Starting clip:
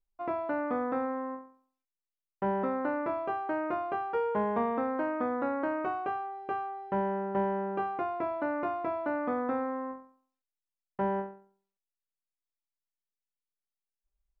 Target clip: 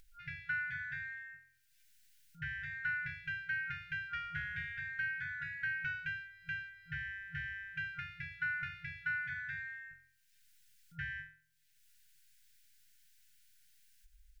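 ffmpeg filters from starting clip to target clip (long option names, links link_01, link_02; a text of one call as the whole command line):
ffmpeg -i in.wav -af "afftfilt=real='re*(1-between(b*sr/4096,170,1400))':imag='im*(1-between(b*sr/4096,170,1400))':win_size=4096:overlap=0.75,acompressor=mode=upward:threshold=-57dB:ratio=2.5,volume=7dB" out.wav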